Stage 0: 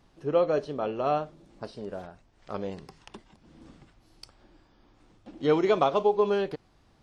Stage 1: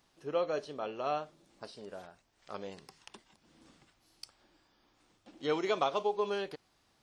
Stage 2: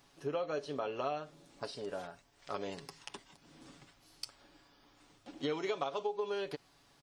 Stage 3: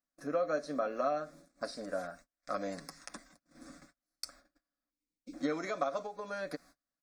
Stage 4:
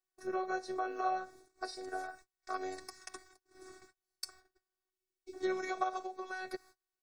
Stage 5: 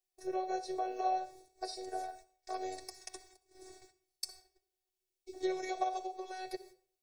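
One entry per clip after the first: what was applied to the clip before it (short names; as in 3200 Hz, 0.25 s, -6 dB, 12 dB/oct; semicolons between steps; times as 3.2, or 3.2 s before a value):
tilt +2.5 dB/oct; gain -6 dB
comb 7.1 ms, depth 47%; compressor 5:1, threshold -38 dBFS, peak gain reduction 13.5 dB; gain +4.5 dB
spectral gain 4.9–5.33, 530–2100 Hz -28 dB; gate -58 dBFS, range -32 dB; fixed phaser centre 600 Hz, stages 8; gain +6 dB
robotiser 373 Hz; gain +1.5 dB
fixed phaser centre 540 Hz, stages 4; reverb RT60 0.50 s, pre-delay 57 ms, DRR 14.5 dB; gain +3 dB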